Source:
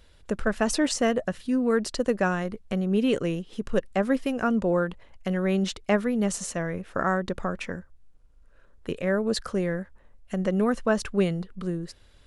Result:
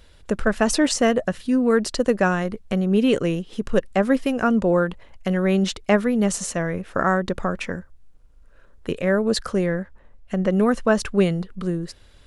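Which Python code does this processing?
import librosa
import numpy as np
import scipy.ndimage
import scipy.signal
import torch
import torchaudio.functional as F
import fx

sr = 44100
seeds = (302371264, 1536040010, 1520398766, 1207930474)

y = fx.high_shelf(x, sr, hz=fx.line((9.65, 9500.0), (10.49, 6200.0)), db=-11.0, at=(9.65, 10.49), fade=0.02)
y = y * librosa.db_to_amplitude(5.0)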